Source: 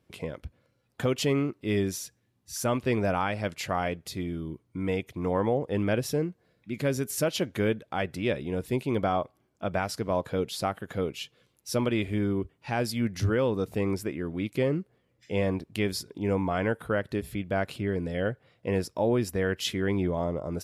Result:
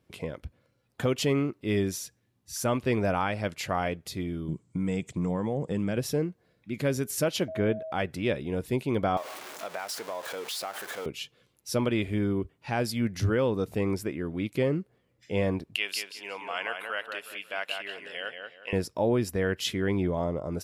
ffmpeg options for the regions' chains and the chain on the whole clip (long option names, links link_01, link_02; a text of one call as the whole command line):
ffmpeg -i in.wav -filter_complex "[0:a]asettb=1/sr,asplit=3[link_01][link_02][link_03];[link_01]atrim=end=4.484[link_04];[link_02]atrim=start=4.48:end=5.97,asetpts=PTS-STARTPTS,afade=type=in:duration=0.004:curve=qsin,afade=type=out:start_time=1.486:duration=0.004:curve=qsin,equalizer=frequency=170:width=1.9:gain=11,acompressor=threshold=-25dB:ratio=5:attack=3.2:release=140:knee=1:detection=peak,lowpass=frequency=7700:width_type=q:width=10[link_05];[link_03]atrim=start=5.966[link_06];[link_04][link_05]acrossfade=duration=0.004:curve1=hsin:curve2=qsin[link_07];[link_07][link_06]acrossfade=duration=0.004:curve1=qsin:curve2=hsin,asettb=1/sr,asplit=3[link_08][link_09][link_10];[link_08]atrim=end=7.484[link_11];[link_09]atrim=start=7.48:end=7.92,asetpts=PTS-STARTPTS,afade=type=in:duration=0.004:curve=qsin,afade=type=out:start_time=0.436:duration=0.004:curve=qsin,lowpass=frequency=1800:poles=1,aeval=exprs='val(0)+0.0178*sin(2*PI*640*n/s)':channel_layout=same[link_12];[link_10]atrim=start=7.916[link_13];[link_11][link_12]acrossfade=duration=0.004:curve1=hsin:curve2=qsin[link_14];[link_14][link_13]acrossfade=duration=0.004:curve1=qsin:curve2=hsin,asettb=1/sr,asplit=3[link_15][link_16][link_17];[link_15]atrim=end=9.174[link_18];[link_16]atrim=start=9.17:end=11.06,asetpts=PTS-STARTPTS,afade=type=in:duration=0.004:curve=qsin,afade=type=out:start_time=1.886:duration=0.004:curve=qsin,aeval=exprs='val(0)+0.5*0.0251*sgn(val(0))':channel_layout=same,highpass=600,acompressor=threshold=-32dB:ratio=3:attack=3.2:release=140:knee=1:detection=peak[link_19];[link_17]atrim=start=11.056[link_20];[link_18][link_19]acrossfade=duration=0.004:curve1=hsin:curve2=qsin[link_21];[link_21][link_20]acrossfade=duration=0.004:curve1=qsin:curve2=hsin,asettb=1/sr,asplit=3[link_22][link_23][link_24];[link_22]atrim=end=15.754[link_25];[link_23]atrim=start=15.75:end=18.73,asetpts=PTS-STARTPTS,afade=type=in:duration=0.004:curve=qsin,afade=type=out:start_time=2.976:duration=0.004:curve=qsin,highpass=1000,equalizer=frequency=2800:width=4.3:gain=13.5,asplit=2[link_26][link_27];[link_27]adelay=181,lowpass=frequency=2900:poles=1,volume=-4.5dB,asplit=2[link_28][link_29];[link_29]adelay=181,lowpass=frequency=2900:poles=1,volume=0.32,asplit=2[link_30][link_31];[link_31]adelay=181,lowpass=frequency=2900:poles=1,volume=0.32,asplit=2[link_32][link_33];[link_33]adelay=181,lowpass=frequency=2900:poles=1,volume=0.32[link_34];[link_26][link_28][link_30][link_32][link_34]amix=inputs=5:normalize=0,atrim=end_sample=131418[link_35];[link_24]atrim=start=18.726[link_36];[link_25][link_35]acrossfade=duration=0.004:curve1=hsin:curve2=qsin[link_37];[link_37][link_36]acrossfade=duration=0.004:curve1=qsin:curve2=hsin" out.wav